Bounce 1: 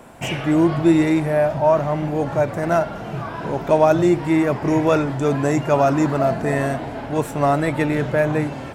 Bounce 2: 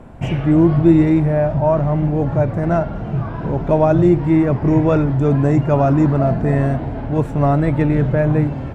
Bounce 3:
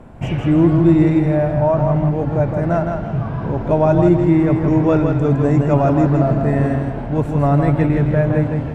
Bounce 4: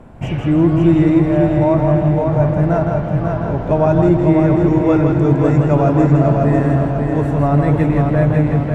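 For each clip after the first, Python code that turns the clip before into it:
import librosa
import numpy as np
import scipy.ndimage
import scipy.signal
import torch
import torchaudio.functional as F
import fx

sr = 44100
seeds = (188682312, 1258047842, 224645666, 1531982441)

y1 = fx.riaa(x, sr, side='playback')
y1 = y1 * 10.0 ** (-2.0 / 20.0)
y2 = fx.echo_feedback(y1, sr, ms=162, feedback_pct=35, wet_db=-5.0)
y2 = y2 * 10.0 ** (-1.0 / 20.0)
y3 = fx.echo_feedback(y2, sr, ms=546, feedback_pct=47, wet_db=-4.5)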